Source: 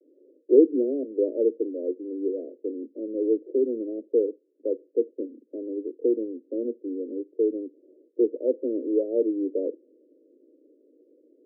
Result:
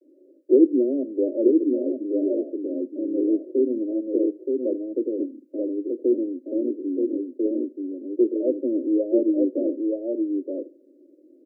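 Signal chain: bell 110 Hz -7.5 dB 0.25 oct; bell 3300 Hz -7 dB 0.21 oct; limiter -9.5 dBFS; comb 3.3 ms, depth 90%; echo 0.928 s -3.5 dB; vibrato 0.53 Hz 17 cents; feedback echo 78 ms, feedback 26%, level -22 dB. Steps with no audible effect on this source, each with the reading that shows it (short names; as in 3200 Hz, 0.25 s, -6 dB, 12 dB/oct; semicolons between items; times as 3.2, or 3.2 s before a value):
bell 110 Hz: input band starts at 200 Hz; bell 3300 Hz: input band ends at 640 Hz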